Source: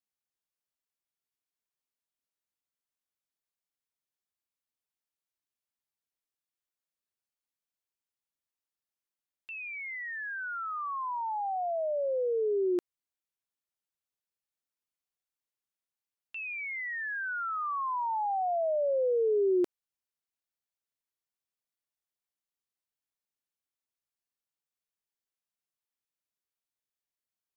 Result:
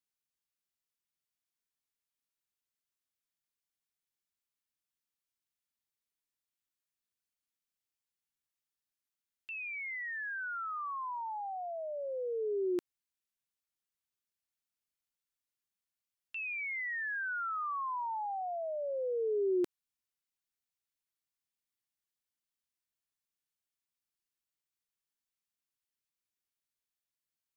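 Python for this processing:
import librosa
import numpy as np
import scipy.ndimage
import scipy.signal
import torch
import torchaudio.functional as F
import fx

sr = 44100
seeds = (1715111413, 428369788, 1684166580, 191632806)

y = fx.peak_eq(x, sr, hz=620.0, db=-8.5, octaves=1.5)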